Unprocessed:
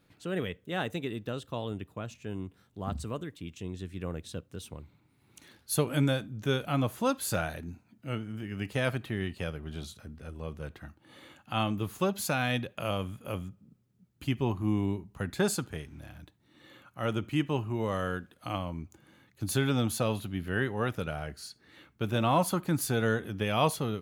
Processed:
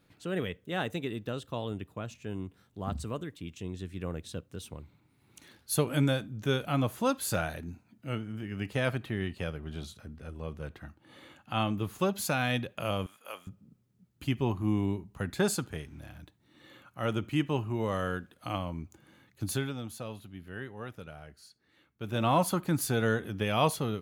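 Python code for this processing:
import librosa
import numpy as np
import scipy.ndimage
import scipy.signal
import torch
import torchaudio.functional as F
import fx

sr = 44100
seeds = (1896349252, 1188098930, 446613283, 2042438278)

y = fx.high_shelf(x, sr, hz=5000.0, db=-3.5, at=(8.21, 11.99))
y = fx.highpass(y, sr, hz=800.0, slope=12, at=(13.06, 13.47))
y = fx.edit(y, sr, fx.fade_down_up(start_s=19.43, length_s=2.84, db=-11.0, fade_s=0.31), tone=tone)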